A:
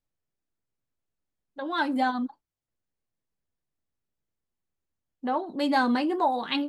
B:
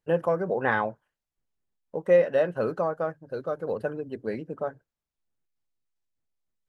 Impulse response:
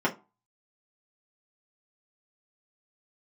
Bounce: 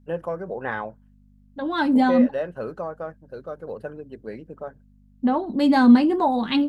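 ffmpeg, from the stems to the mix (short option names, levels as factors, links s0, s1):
-filter_complex "[0:a]lowshelf=f=260:g=10.5,aeval=exprs='val(0)+0.00158*(sin(2*PI*50*n/s)+sin(2*PI*2*50*n/s)/2+sin(2*PI*3*50*n/s)/3+sin(2*PI*4*50*n/s)/4+sin(2*PI*5*50*n/s)/5)':c=same,equalizer=f=220:w=3.4:g=9,volume=1.19[s0];[1:a]volume=0.631[s1];[s0][s1]amix=inputs=2:normalize=0"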